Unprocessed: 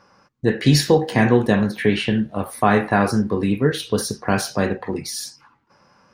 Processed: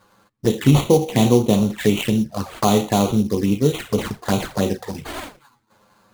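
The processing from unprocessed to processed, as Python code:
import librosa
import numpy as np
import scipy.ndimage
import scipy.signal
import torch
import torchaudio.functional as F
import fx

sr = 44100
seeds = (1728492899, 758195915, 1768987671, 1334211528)

y = fx.sample_hold(x, sr, seeds[0], rate_hz=5500.0, jitter_pct=20)
y = fx.env_flanger(y, sr, rest_ms=10.1, full_db=-16.0)
y = y * 10.0 ** (1.5 / 20.0)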